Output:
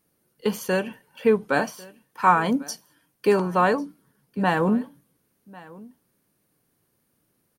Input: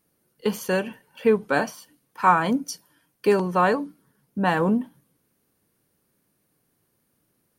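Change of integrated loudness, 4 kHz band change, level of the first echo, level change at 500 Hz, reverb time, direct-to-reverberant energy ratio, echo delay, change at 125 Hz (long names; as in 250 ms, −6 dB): 0.0 dB, 0.0 dB, −22.0 dB, 0.0 dB, no reverb audible, no reverb audible, 1,097 ms, 0.0 dB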